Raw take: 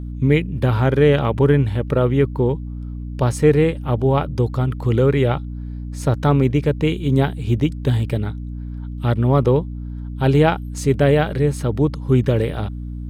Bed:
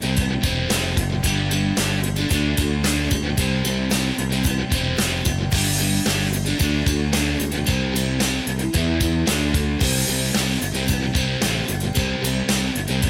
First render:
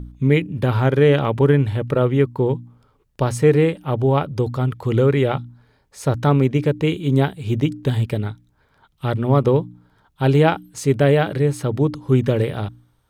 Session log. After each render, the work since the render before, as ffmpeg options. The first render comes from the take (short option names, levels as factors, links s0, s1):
-af "bandreject=f=60:t=h:w=4,bandreject=f=120:t=h:w=4,bandreject=f=180:t=h:w=4,bandreject=f=240:t=h:w=4,bandreject=f=300:t=h:w=4"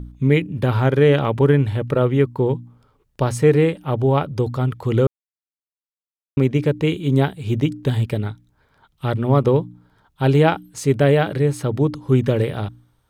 -filter_complex "[0:a]asplit=3[s0][s1][s2];[s0]atrim=end=5.07,asetpts=PTS-STARTPTS,afade=t=out:st=5.066:d=0.004:c=hsin[s3];[s1]atrim=start=5.07:end=6.37,asetpts=PTS-STARTPTS,volume=0[s4];[s2]atrim=start=6.37,asetpts=PTS-STARTPTS,afade=t=in:d=0.004:c=hsin[s5];[s3][s4][s5]concat=n=3:v=0:a=1"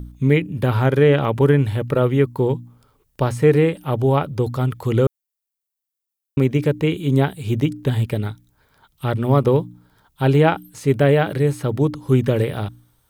-filter_complex "[0:a]acrossover=split=3100[s0][s1];[s1]acompressor=threshold=0.00447:ratio=4:attack=1:release=60[s2];[s0][s2]amix=inputs=2:normalize=0,aemphasis=mode=production:type=50kf"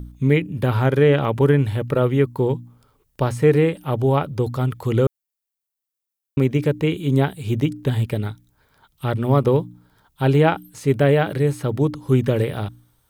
-af "volume=0.891"